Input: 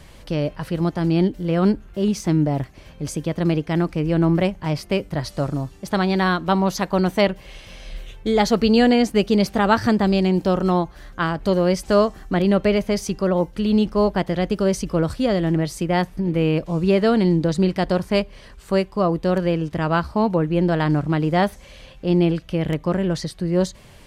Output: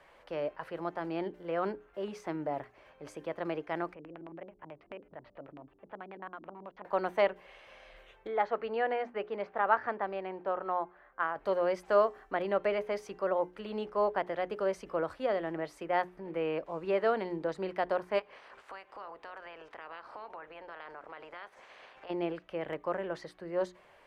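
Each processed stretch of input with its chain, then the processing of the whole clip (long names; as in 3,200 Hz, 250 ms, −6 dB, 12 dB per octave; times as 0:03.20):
0:03.94–0:06.85: parametric band 6,800 Hz −14.5 dB 2.8 octaves + downward compressor 2.5 to 1, threshold −34 dBFS + auto-filter low-pass square 9.2 Hz 270–2,900 Hz
0:08.27–0:11.36: low-pass filter 2,100 Hz + low-shelf EQ 470 Hz −8 dB + one half of a high-frequency compander decoder only
0:18.18–0:22.09: ceiling on every frequency bin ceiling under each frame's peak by 22 dB + Bessel low-pass filter 7,800 Hz + downward compressor 5 to 1, threshold −35 dBFS
whole clip: three-way crossover with the lows and the highs turned down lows −23 dB, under 430 Hz, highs −19 dB, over 2,300 Hz; mains-hum notches 60/120/180/240/300/360/420 Hz; level −5.5 dB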